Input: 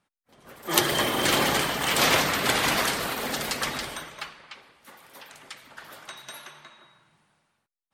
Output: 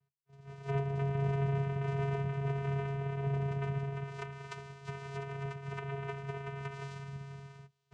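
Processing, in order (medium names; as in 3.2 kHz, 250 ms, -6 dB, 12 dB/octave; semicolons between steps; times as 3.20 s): octave divider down 1 oct, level -1 dB; recorder AGC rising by 8.5 dB/s; low-pass that closes with the level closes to 1.1 kHz, closed at -22 dBFS; vocoder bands 4, square 138 Hz; in parallel at -0.5 dB: compression, threshold -37 dBFS, peak gain reduction 16 dB; on the sum: trim -9 dB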